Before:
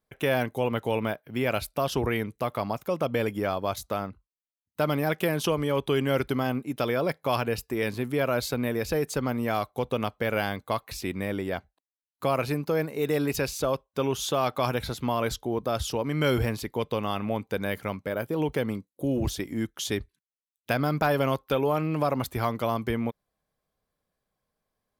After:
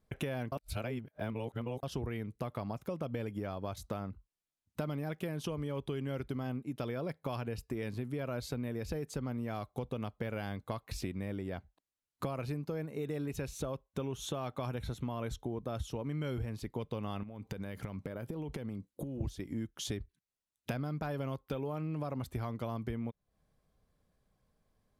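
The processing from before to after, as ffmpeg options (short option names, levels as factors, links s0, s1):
-filter_complex "[0:a]asettb=1/sr,asplit=3[s0][s1][s2];[s0]atrim=end=12.784[s3];[s1]atrim=start=12.78:end=16.49,asetpts=PTS-STARTPTS,afade=t=in:d=0.004:c=qsin,afade=t=out:st=3.706:d=0.004:c=qsin,bandreject=f=4800:w=5.5[s4];[s2]atrim=start=16.486[s5];[s3][s4]acrossfade=d=0.004:c1=hsin:c2=qsin[s6];[s6][s5]acrossfade=d=0.004:c1=qsin:c2=hsin,asettb=1/sr,asplit=3[s7][s8][s9];[s7]atrim=end=17.234[s10];[s8]atrim=start=17.23:end=19.21,asetpts=PTS-STARTPTS,afade=t=in:d=0.004:c=qsin,afade=t=out:st=1.976:d=0.004:c=qsin,acompressor=threshold=0.0112:ratio=16:attack=3.2:release=140:knee=1:detection=peak[s11];[s9]atrim=start=19.206[s12];[s10][s11]acrossfade=d=0.004:c1=hsin:c2=qsin[s13];[s13][s12]acrossfade=d=0.004:c1=qsin:c2=hsin,asplit=3[s14][s15][s16];[s14]atrim=end=0.522[s17];[s15]atrim=start=0.518:end=1.832,asetpts=PTS-STARTPTS,areverse[s18];[s16]atrim=start=1.828[s19];[s17][s18]acrossfade=d=0.004:c1=hsin:c2=hsin[s20];[s20][s19]acrossfade=d=0.004:c1=hsin:c2=hsin,lowpass=12000,lowshelf=f=270:g=11.5,acompressor=threshold=0.0141:ratio=6,volume=1.12"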